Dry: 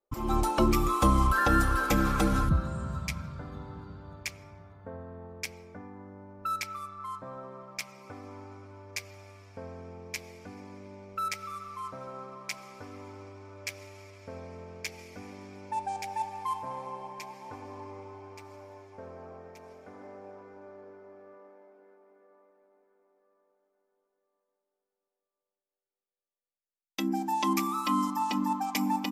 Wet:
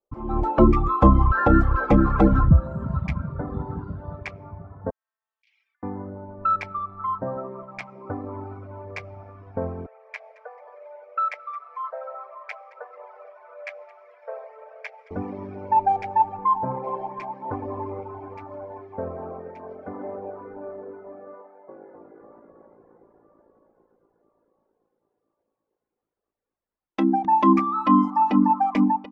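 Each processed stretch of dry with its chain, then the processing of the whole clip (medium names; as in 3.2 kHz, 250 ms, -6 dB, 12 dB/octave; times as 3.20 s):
4.90–5.83 s: median filter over 5 samples + compressor with a negative ratio -49 dBFS + ladder high-pass 2.7 kHz, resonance 50%
9.86–15.11 s: rippled Chebyshev high-pass 450 Hz, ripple 6 dB + feedback delay 219 ms, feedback 26%, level -15 dB
16.37–16.84 s: distance through air 330 m + doubling 16 ms -6 dB
21.42–27.25 s: bass shelf 240 Hz -9 dB + frequency-shifting echo 262 ms, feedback 52%, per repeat -56 Hz, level -3 dB
whole clip: level rider gain up to 16 dB; reverb removal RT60 1.3 s; low-pass 1.1 kHz 12 dB/octave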